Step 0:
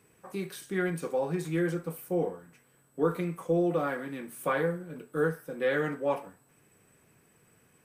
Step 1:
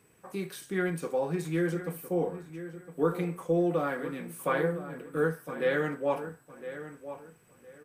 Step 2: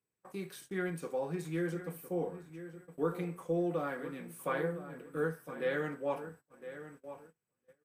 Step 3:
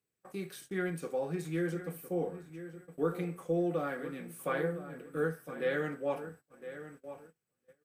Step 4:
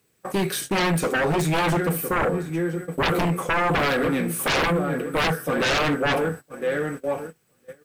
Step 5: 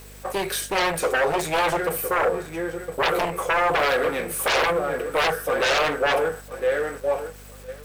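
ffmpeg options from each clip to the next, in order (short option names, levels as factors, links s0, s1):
-filter_complex "[0:a]asplit=2[s0][s1];[s1]adelay=1010,lowpass=f=2600:p=1,volume=0.251,asplit=2[s2][s3];[s3]adelay=1010,lowpass=f=2600:p=1,volume=0.25,asplit=2[s4][s5];[s5]adelay=1010,lowpass=f=2600:p=1,volume=0.25[s6];[s0][s2][s4][s6]amix=inputs=4:normalize=0"
-af "agate=range=0.0794:threshold=0.00398:ratio=16:detection=peak,volume=0.501"
-af "equalizer=f=980:w=6.7:g=-8,volume=1.19"
-af "aeval=exprs='0.112*sin(PI/2*6.31*val(0)/0.112)':c=same,volume=1.12"
-af "aeval=exprs='val(0)+0.5*0.01*sgn(val(0))':c=same,lowshelf=f=340:t=q:w=1.5:g=-11.5,aeval=exprs='val(0)+0.00631*(sin(2*PI*50*n/s)+sin(2*PI*2*50*n/s)/2+sin(2*PI*3*50*n/s)/3+sin(2*PI*4*50*n/s)/4+sin(2*PI*5*50*n/s)/5)':c=same"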